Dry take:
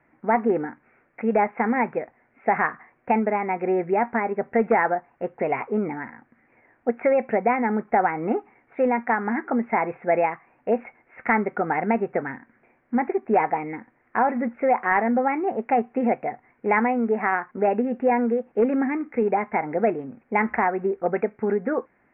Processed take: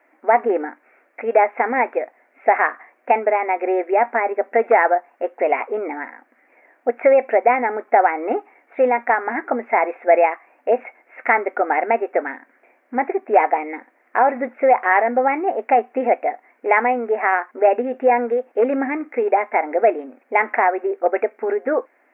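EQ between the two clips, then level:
linear-phase brick-wall high-pass 240 Hz
parametric band 620 Hz +8 dB 0.71 octaves
high-shelf EQ 2,100 Hz +11.5 dB
0.0 dB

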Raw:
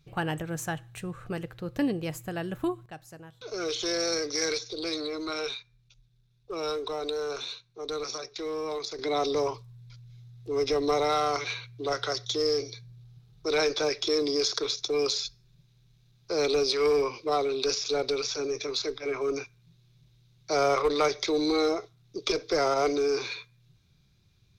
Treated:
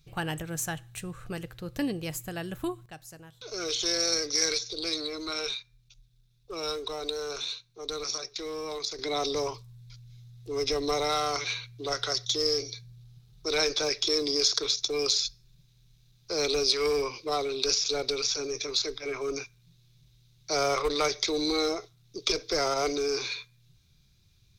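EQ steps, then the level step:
low-shelf EQ 84 Hz +10 dB
high-shelf EQ 2,800 Hz +11 dB
−4.0 dB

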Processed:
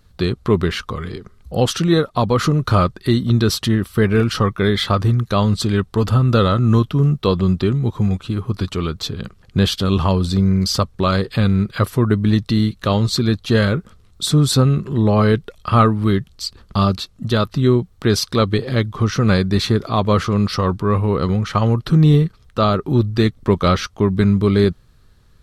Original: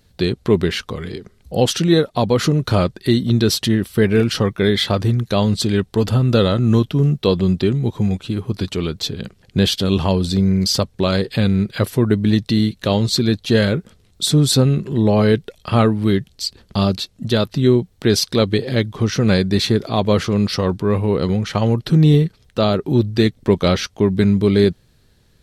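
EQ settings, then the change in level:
low-shelf EQ 89 Hz +11 dB
parametric band 1,200 Hz +11 dB 0.56 octaves
−2.5 dB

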